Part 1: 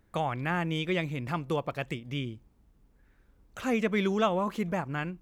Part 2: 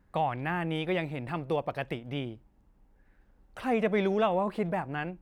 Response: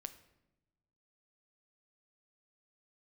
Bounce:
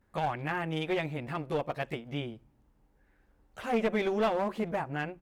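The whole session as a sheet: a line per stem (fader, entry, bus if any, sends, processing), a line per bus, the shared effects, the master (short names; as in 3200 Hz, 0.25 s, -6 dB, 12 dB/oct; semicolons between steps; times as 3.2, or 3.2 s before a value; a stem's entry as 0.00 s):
-13.0 dB, 0.00 s, send -6.5 dB, low shelf 400 Hz +6 dB
-1.0 dB, 13 ms, polarity flipped, no send, HPF 250 Hz 12 dB/oct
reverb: on, pre-delay 7 ms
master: one-sided clip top -28 dBFS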